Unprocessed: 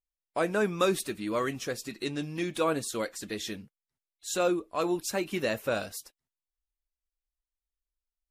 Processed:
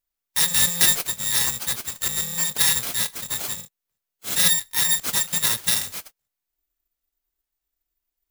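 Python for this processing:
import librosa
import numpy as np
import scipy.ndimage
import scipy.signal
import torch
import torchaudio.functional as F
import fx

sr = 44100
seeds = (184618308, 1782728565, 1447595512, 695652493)

y = fx.bit_reversed(x, sr, seeds[0], block=128)
y = (np.kron(y[::3], np.eye(3)[0]) * 3)[:len(y)]
y = y * 10.0 ** (3.0 / 20.0)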